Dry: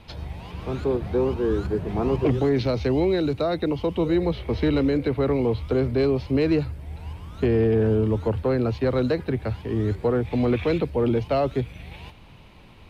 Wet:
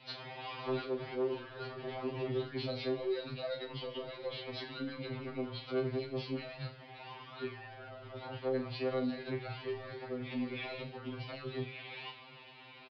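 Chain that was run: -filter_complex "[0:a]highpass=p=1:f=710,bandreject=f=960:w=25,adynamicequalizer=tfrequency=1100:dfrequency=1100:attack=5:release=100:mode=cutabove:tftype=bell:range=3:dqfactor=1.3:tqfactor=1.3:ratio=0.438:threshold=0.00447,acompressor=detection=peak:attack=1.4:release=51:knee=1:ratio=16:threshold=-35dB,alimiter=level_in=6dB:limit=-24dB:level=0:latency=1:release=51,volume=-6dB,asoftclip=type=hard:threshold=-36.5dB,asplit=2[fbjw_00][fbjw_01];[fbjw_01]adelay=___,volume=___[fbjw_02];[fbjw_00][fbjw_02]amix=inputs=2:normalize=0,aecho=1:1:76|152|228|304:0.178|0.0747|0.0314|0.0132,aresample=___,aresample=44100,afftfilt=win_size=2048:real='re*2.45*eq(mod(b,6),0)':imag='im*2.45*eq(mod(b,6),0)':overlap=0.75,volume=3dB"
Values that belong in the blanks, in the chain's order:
36, -8.5dB, 11025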